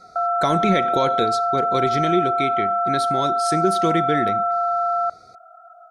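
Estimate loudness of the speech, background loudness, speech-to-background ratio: −24.5 LKFS, −21.0 LKFS, −3.5 dB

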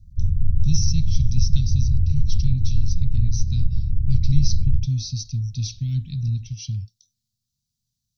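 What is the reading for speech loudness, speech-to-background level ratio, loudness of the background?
−27.5 LKFS, −3.0 dB, −24.5 LKFS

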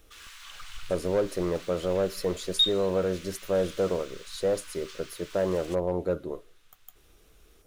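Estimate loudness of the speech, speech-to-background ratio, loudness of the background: −29.5 LKFS, 4.5 dB, −34.0 LKFS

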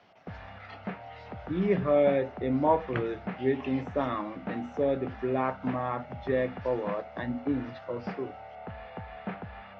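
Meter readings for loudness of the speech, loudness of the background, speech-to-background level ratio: −30.5 LKFS, −42.5 LKFS, 12.0 dB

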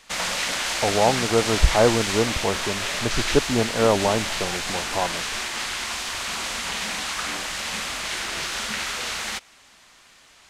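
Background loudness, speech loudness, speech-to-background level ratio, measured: −26.0 LKFS, −23.5 LKFS, 2.5 dB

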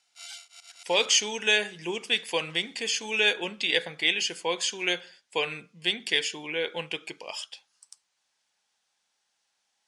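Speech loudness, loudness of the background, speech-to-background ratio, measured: −26.5 LKFS, −45.5 LKFS, 19.0 dB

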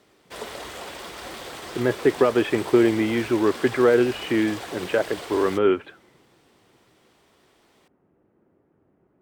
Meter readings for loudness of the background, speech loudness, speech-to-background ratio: −36.0 LKFS, −22.0 LKFS, 14.0 dB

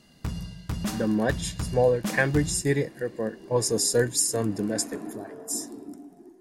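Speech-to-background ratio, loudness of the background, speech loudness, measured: 8.5 dB, −34.5 LKFS, −26.0 LKFS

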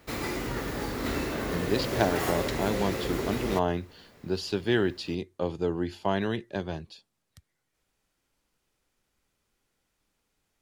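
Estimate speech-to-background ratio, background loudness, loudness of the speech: 1.0 dB, −31.5 LKFS, −30.5 LKFS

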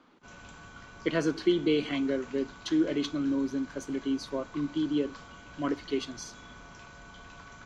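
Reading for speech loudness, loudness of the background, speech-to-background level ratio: −30.5 LKFS, −49.0 LKFS, 18.5 dB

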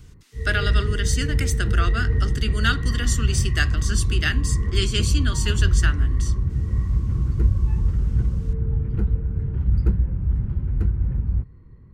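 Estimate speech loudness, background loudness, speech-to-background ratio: −27.0 LKFS, −23.5 LKFS, −3.5 dB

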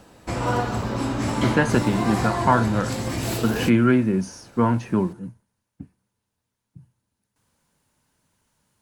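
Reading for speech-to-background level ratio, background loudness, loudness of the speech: 3.5 dB, −26.0 LKFS, −22.5 LKFS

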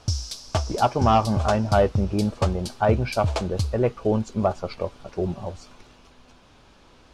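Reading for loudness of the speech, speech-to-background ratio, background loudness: −24.5 LKFS, 5.0 dB, −29.5 LKFS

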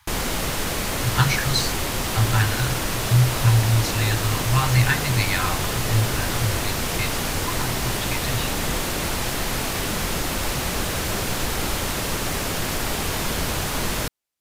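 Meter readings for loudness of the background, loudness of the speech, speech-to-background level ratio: −24.5 LKFS, −24.0 LKFS, 0.5 dB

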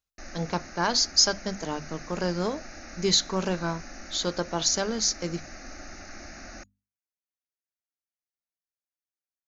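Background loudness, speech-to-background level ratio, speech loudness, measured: −43.5 LKFS, 17.0 dB, −26.5 LKFS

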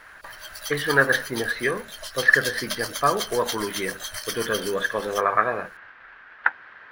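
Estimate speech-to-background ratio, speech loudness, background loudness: 8.0 dB, −24.5 LKFS, −32.5 LKFS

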